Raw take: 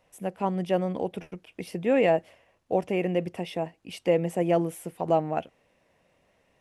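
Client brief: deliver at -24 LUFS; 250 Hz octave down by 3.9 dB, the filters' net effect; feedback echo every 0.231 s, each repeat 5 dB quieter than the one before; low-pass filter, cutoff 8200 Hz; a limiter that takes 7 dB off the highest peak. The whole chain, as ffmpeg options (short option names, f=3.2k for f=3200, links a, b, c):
-af "lowpass=8.2k,equalizer=f=250:t=o:g=-6.5,alimiter=limit=-18.5dB:level=0:latency=1,aecho=1:1:231|462|693|924|1155|1386|1617:0.562|0.315|0.176|0.0988|0.0553|0.031|0.0173,volume=6.5dB"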